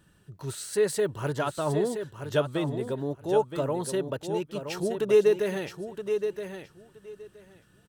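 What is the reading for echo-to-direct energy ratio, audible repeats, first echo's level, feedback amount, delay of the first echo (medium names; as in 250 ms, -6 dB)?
-8.0 dB, 2, -8.0 dB, 16%, 971 ms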